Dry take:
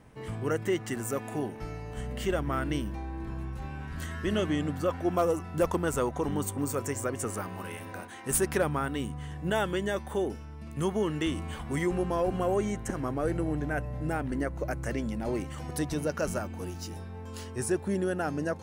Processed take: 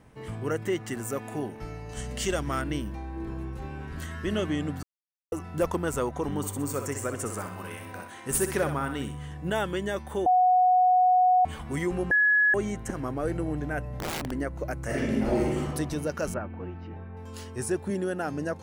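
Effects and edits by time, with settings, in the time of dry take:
1.89–2.62 bell 6400 Hz +13 dB 1.8 oct
3.16–4 bell 400 Hz +7.5 dB
4.83–5.32 mute
6.37–9.29 thinning echo 63 ms, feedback 38%, level -7 dB
10.26–11.45 bleep 734 Hz -17 dBFS
12.11–12.54 bleep 1690 Hz -18 dBFS
13.89–14.31 wrapped overs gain 26.5 dB
14.85–15.6 reverb throw, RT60 1.3 s, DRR -5.5 dB
16.34–17.17 LPF 2400 Hz 24 dB/oct
17.9–18.32 HPF 120 Hz

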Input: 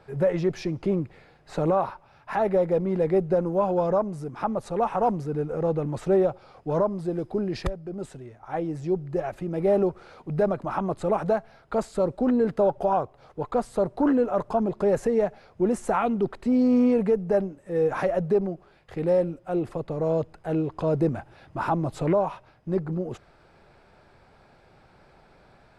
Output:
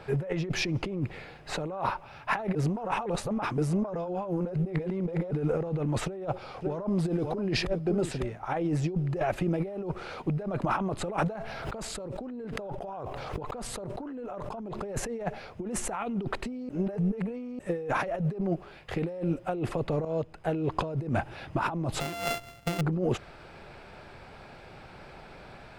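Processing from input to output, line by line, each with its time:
2.55–5.31 reverse
6.05–8.37 echo 0.555 s -17 dB
11.35–14.8 fast leveller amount 100%
16.69–17.59 reverse
20.05–20.79 fade in, from -21.5 dB
22–22.81 sample sorter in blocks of 64 samples
whole clip: bell 2700 Hz +5 dB 0.82 oct; negative-ratio compressor -32 dBFS, ratio -1

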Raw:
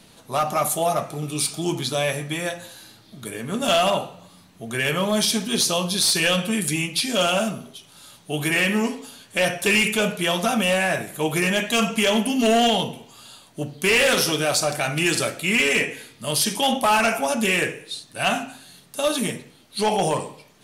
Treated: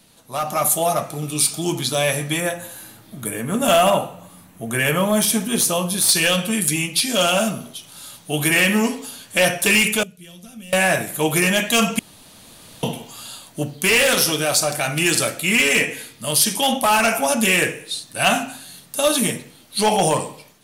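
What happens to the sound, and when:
2.4–6.09 bell 4500 Hz -10.5 dB 1.1 oct
10.03–10.73 passive tone stack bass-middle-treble 10-0-1
11.99–12.83 room tone
whole clip: high shelf 9300 Hz +10 dB; notch 400 Hz, Q 12; AGC; gain -4.5 dB

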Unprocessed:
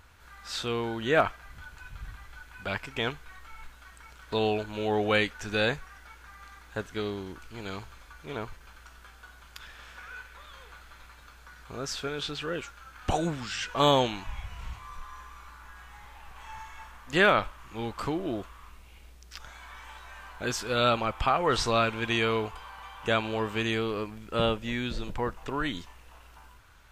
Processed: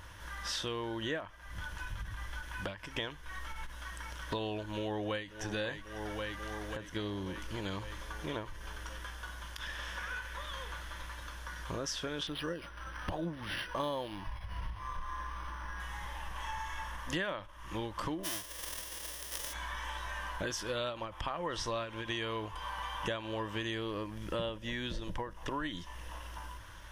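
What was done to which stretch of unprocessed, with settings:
4.62–5.28 echo throw 0.54 s, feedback 65%, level -14 dB
12.27–15.8 decimation joined by straight lines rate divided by 6×
18.23–19.52 spectral whitening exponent 0.1
whole clip: ripple EQ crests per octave 1.2, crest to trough 8 dB; compressor 6:1, threshold -41 dBFS; ending taper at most 130 dB/s; gain +6 dB

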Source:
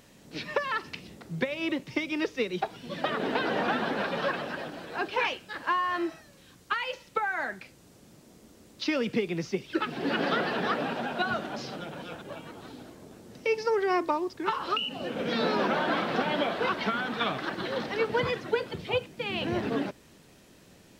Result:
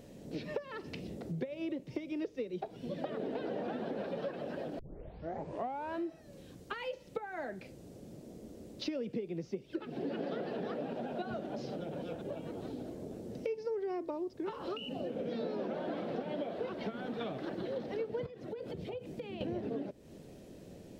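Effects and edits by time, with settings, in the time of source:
4.79 tape start 1.24 s
18.26–19.41 compressor 12:1, threshold -40 dBFS
whole clip: resonant low shelf 790 Hz +10 dB, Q 1.5; compressor 4:1, threshold -32 dBFS; gain -5.5 dB

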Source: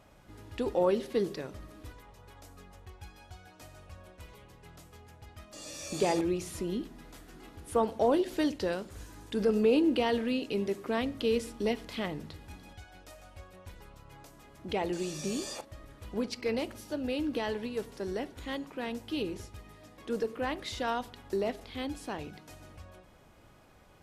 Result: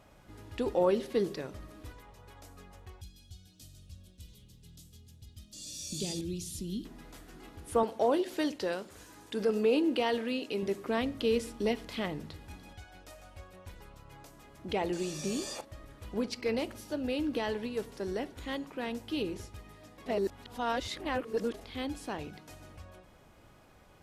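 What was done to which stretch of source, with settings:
3.01–6.85 EQ curve 210 Hz 0 dB, 340 Hz -9 dB, 950 Hz -25 dB, 2200 Hz -15 dB, 3400 Hz +2 dB
7.83–10.63 HPF 290 Hz 6 dB/oct
20.06–21.54 reverse

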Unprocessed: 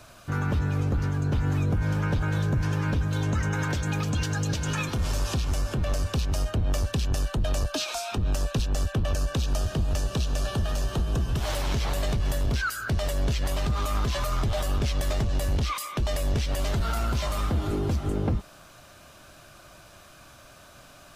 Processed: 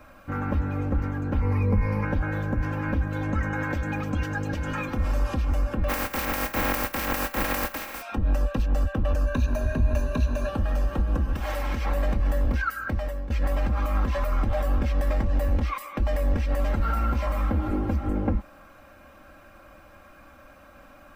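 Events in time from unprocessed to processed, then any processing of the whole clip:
1.41–2.05 ripple EQ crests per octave 0.87, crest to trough 13 dB
5.88–8.01 spectral contrast lowered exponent 0.22
9.26–10.49 ripple EQ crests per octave 1.5, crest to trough 12 dB
11.33–11.86 tilt shelf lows -3.5 dB, about 1300 Hz
12.83–13.3 fade out, to -15 dB
whole clip: band shelf 6100 Hz -14.5 dB 2.3 oct; notch 6800 Hz, Q 21; comb 3.7 ms, depth 71%

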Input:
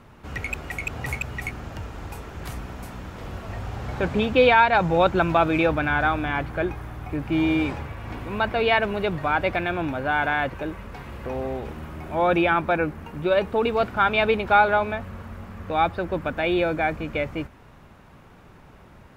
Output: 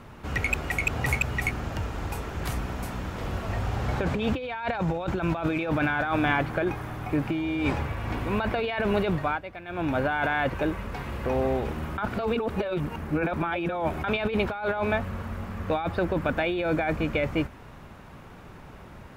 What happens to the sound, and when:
5.51–7.4 bell 61 Hz -11.5 dB
9.09–9.99 dip -19 dB, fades 0.32 s
11.98–14.04 reverse
whole clip: negative-ratio compressor -26 dBFS, ratio -1

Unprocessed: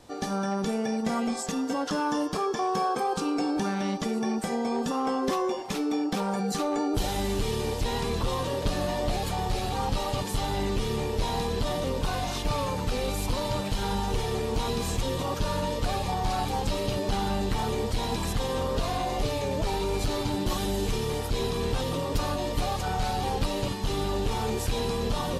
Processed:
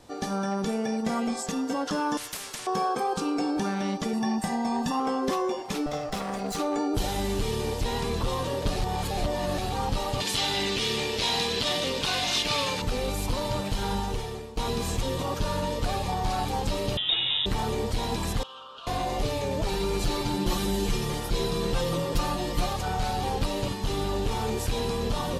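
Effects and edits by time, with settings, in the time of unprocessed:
2.17–2.67 spectral compressor 10:1
4.13–5 comb 1.1 ms
5.86–6.57 minimum comb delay 1.5 ms
8.76–9.58 reverse
10.2–12.82 weighting filter D
13.96–14.57 fade out, to -17.5 dB
16.97–17.46 inverted band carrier 3700 Hz
18.43–18.87 double band-pass 2000 Hz, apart 1.2 oct
19.68–22.73 comb 5.8 ms

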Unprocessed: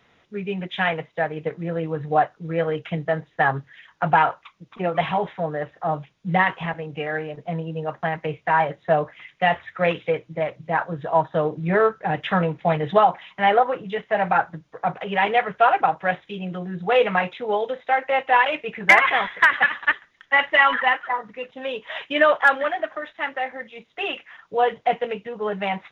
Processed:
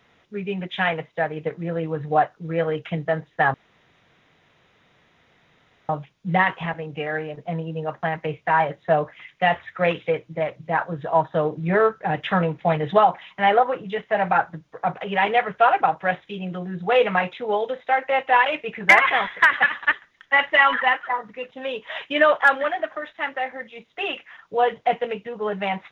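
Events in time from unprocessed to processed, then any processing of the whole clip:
3.54–5.89 room tone

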